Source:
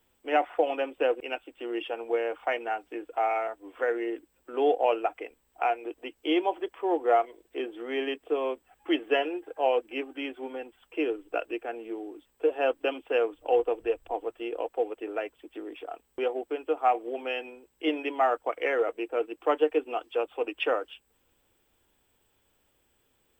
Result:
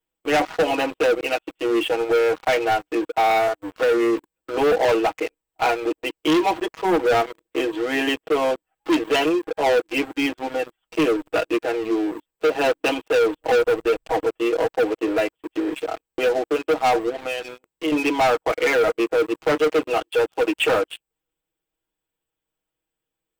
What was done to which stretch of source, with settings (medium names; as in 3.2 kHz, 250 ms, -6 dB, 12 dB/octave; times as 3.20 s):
17.09–17.92 s: compression 3:1, threshold -39 dBFS
whole clip: comb 6.3 ms, depth 99%; dynamic bell 140 Hz, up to +4 dB, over -40 dBFS, Q 0.82; waveshaping leveller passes 5; trim -8 dB